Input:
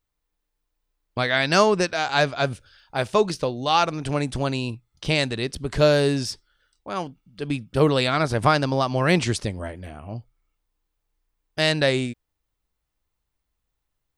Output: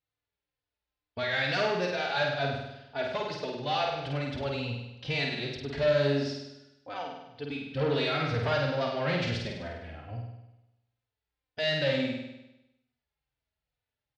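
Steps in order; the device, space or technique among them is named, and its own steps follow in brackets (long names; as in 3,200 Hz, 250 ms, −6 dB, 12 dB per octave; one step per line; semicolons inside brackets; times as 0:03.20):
barber-pole flanger into a guitar amplifier (barber-pole flanger 3.3 ms −2.2 Hz; soft clipping −20 dBFS, distortion −10 dB; loudspeaker in its box 87–4,500 Hz, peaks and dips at 200 Hz −9 dB, 340 Hz −9 dB, 1,100 Hz −9 dB)
flutter between parallel walls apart 8.6 metres, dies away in 0.93 s
level −2.5 dB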